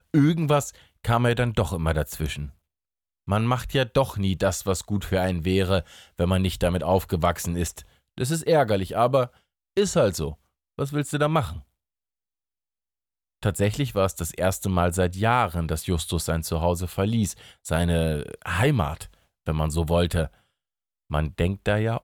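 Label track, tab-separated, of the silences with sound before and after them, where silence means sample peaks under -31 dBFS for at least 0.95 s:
11.580000	13.430000	silence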